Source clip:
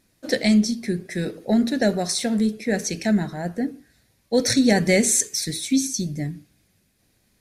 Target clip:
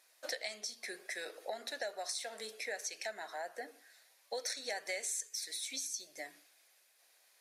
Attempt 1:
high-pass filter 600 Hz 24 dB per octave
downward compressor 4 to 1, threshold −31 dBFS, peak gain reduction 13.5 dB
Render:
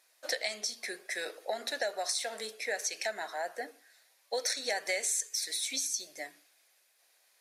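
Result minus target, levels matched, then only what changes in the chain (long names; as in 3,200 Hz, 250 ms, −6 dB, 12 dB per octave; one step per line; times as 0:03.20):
downward compressor: peak gain reduction −6.5 dB
change: downward compressor 4 to 1, threshold −40 dBFS, peak gain reduction 20 dB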